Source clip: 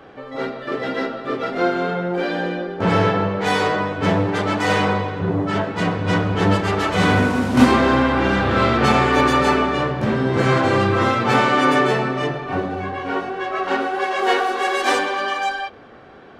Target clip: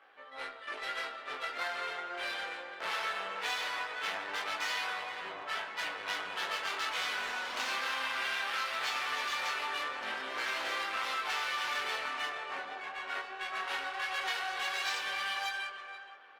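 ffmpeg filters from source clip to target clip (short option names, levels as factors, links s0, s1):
-filter_complex "[0:a]asettb=1/sr,asplit=3[s0][s1][s2];[s0]atrim=end=7.834[s3];[s1]atrim=start=7.83:end=8.63,asetpts=PTS-STARTPTS,afade=t=in:d=0.004:c=qsin,afade=t=out:st=0.796:d=0.004:c=qsin,equalizer=f=2300:w=0.59:g=3.5[s4];[s2]atrim=start=8.626[s5];[s3][s4]acrossfade=d=0.004:c1=hsin:c2=qsin[s6];[s6][s5]acrossfade=d=0.004:c1=qsin:c2=hsin,aeval=exprs='(tanh(5.62*val(0)+0.7)-tanh(0.7))/5.62':c=same,highpass=690,lowpass=7200,tiltshelf=f=1400:g=-8.5,asplit=2[s7][s8];[s8]adelay=473,lowpass=f=1800:p=1,volume=0.355,asplit=2[s9][s10];[s10]adelay=473,lowpass=f=1800:p=1,volume=0.29,asplit=2[s11][s12];[s12]adelay=473,lowpass=f=1800:p=1,volume=0.29[s13];[s9][s11][s13]amix=inputs=3:normalize=0[s14];[s7][s14]amix=inputs=2:normalize=0,adynamicsmooth=sensitivity=5:basefreq=3300,flanger=delay=18.5:depth=7.8:speed=0.19,acompressor=threshold=0.0398:ratio=6,volume=0.708" -ar 48000 -c:a libopus -b:a 32k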